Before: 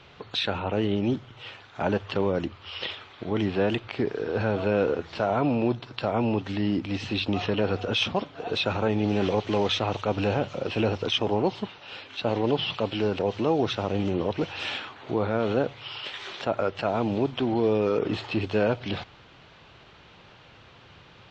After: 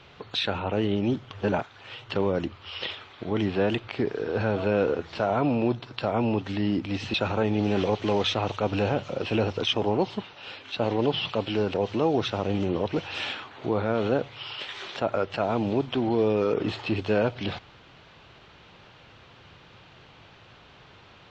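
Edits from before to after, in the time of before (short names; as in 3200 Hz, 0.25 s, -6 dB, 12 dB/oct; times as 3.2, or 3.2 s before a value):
1.31–2.1 reverse
7.14–8.59 cut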